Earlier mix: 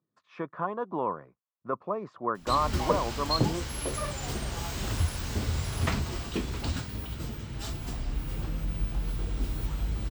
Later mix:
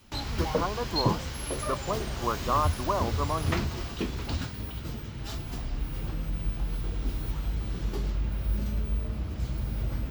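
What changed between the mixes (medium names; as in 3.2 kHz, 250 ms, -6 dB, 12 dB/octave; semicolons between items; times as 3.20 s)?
background: entry -2.35 s; master: add peaking EQ 8.1 kHz -8 dB 0.34 oct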